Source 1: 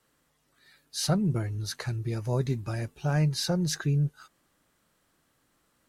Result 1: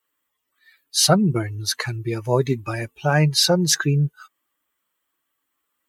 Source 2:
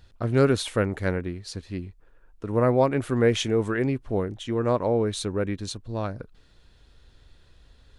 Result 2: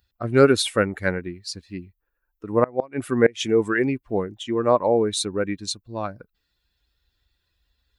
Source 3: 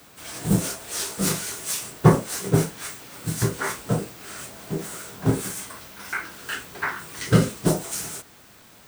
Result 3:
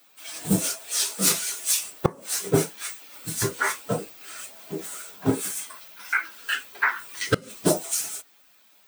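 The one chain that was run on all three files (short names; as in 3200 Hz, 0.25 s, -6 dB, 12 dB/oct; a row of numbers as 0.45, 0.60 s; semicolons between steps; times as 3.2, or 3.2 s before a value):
per-bin expansion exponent 1.5; HPF 360 Hz 6 dB/oct; flipped gate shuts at -13 dBFS, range -26 dB; normalise peaks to -3 dBFS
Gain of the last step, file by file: +15.5, +9.5, +7.5 dB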